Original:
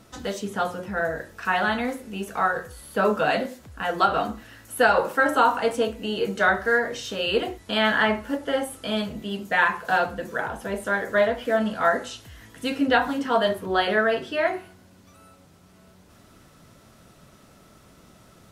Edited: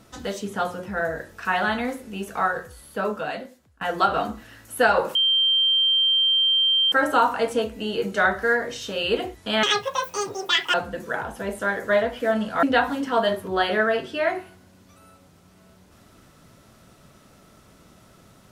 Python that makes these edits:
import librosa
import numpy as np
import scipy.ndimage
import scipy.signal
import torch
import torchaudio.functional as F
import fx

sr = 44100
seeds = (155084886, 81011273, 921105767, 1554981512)

y = fx.edit(x, sr, fx.fade_out_to(start_s=2.41, length_s=1.4, floor_db=-21.5),
    fx.insert_tone(at_s=5.15, length_s=1.77, hz=3150.0, db=-16.5),
    fx.speed_span(start_s=7.86, length_s=2.13, speed=1.92),
    fx.cut(start_s=11.88, length_s=0.93), tone=tone)